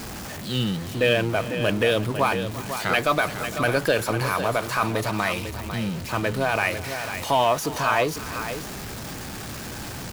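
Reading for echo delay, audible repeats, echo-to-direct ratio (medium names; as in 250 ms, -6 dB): 342 ms, 2, -9.0 dB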